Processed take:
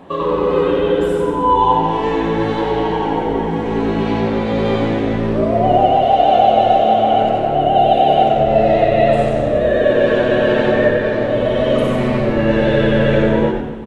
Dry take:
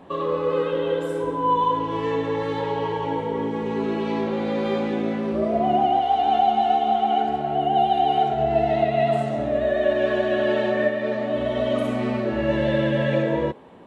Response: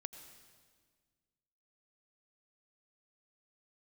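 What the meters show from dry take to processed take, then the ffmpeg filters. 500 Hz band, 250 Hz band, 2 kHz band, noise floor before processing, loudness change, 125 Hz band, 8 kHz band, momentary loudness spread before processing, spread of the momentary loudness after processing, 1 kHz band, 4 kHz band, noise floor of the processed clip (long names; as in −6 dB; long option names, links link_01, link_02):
+8.0 dB, +7.5 dB, +8.0 dB, −28 dBFS, +7.5 dB, +9.5 dB, can't be measured, 6 LU, 6 LU, +6.5 dB, +7.5 dB, −20 dBFS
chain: -filter_complex "[0:a]asplit=6[link_01][link_02][link_03][link_04][link_05][link_06];[link_02]adelay=92,afreqshift=-110,volume=-4.5dB[link_07];[link_03]adelay=184,afreqshift=-220,volume=-11.6dB[link_08];[link_04]adelay=276,afreqshift=-330,volume=-18.8dB[link_09];[link_05]adelay=368,afreqshift=-440,volume=-25.9dB[link_10];[link_06]adelay=460,afreqshift=-550,volume=-33dB[link_11];[link_01][link_07][link_08][link_09][link_10][link_11]amix=inputs=6:normalize=0,asplit=2[link_12][link_13];[1:a]atrim=start_sample=2205[link_14];[link_13][link_14]afir=irnorm=-1:irlink=0,volume=10dB[link_15];[link_12][link_15]amix=inputs=2:normalize=0,volume=-3.5dB"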